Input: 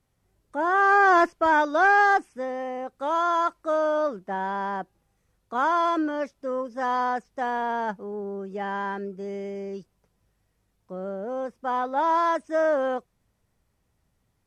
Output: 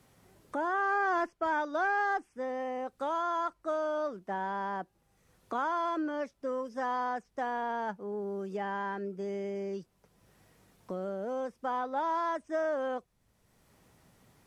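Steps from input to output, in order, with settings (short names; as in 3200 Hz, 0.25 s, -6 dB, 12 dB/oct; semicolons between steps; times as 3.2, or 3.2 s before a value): three-band squash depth 70%; gain -8.5 dB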